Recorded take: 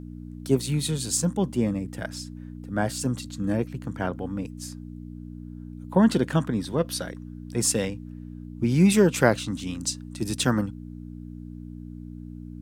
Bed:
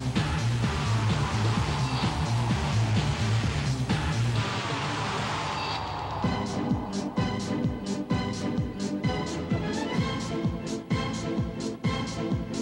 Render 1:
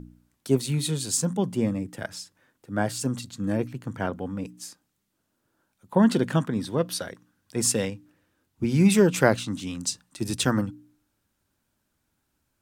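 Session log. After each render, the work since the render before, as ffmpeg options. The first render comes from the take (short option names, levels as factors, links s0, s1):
-af "bandreject=f=60:t=h:w=4,bandreject=f=120:t=h:w=4,bandreject=f=180:t=h:w=4,bandreject=f=240:t=h:w=4,bandreject=f=300:t=h:w=4"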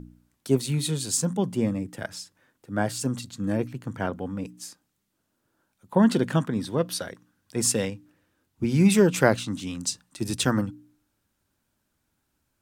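-af anull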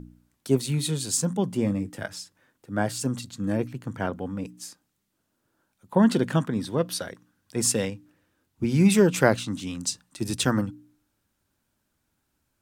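-filter_complex "[0:a]asettb=1/sr,asplit=3[s0][s1][s2];[s0]atrim=end=1.524[s3];[s1]atrim=start=1.52:end=2.16,asetpts=PTS-STARTPTS,afade=t=in:d=0.004:c=qsin,afade=t=out:st=0.636:d=0.004:c=qsin,asplit=2[s4][s5];[s5]adelay=20,volume=0.282[s6];[s4][s6]amix=inputs=2:normalize=0,atrim=end_sample=28224[s7];[s2]atrim=start=2.156[s8];[s3][s7]acrossfade=d=0.004:c1=hsin:c2=qsin[s9];[s9][s8]acrossfade=d=0.004:c1=qsin:c2=hsin"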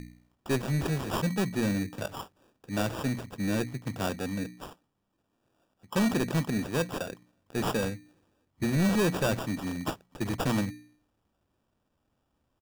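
-af "aresample=16000,asoftclip=type=tanh:threshold=0.0841,aresample=44100,acrusher=samples=21:mix=1:aa=0.000001"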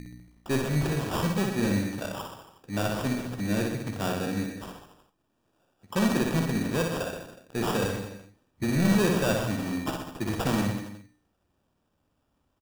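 -filter_complex "[0:a]asplit=2[s0][s1];[s1]adelay=49,volume=0.237[s2];[s0][s2]amix=inputs=2:normalize=0,aecho=1:1:60|126|198.6|278.5|366.3:0.631|0.398|0.251|0.158|0.1"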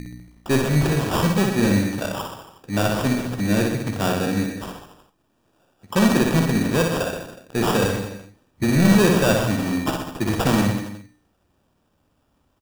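-af "volume=2.37"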